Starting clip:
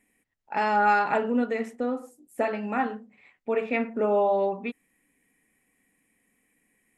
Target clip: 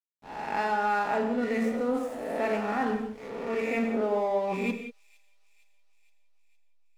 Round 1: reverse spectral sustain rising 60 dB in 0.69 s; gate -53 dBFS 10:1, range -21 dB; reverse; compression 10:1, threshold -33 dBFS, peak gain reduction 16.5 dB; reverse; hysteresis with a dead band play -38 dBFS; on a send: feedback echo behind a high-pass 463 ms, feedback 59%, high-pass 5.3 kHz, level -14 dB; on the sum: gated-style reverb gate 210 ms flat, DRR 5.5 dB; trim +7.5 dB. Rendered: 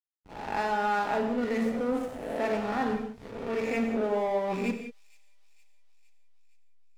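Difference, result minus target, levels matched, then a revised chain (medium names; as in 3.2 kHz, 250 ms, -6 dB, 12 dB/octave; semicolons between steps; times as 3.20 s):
hysteresis with a dead band: distortion +7 dB
reverse spectral sustain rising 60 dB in 0.69 s; gate -53 dBFS 10:1, range -21 dB; reverse; compression 10:1, threshold -33 dBFS, peak gain reduction 16.5 dB; reverse; hysteresis with a dead band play -45.5 dBFS; on a send: feedback echo behind a high-pass 463 ms, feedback 59%, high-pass 5.3 kHz, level -14 dB; on the sum: gated-style reverb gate 210 ms flat, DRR 5.5 dB; trim +7.5 dB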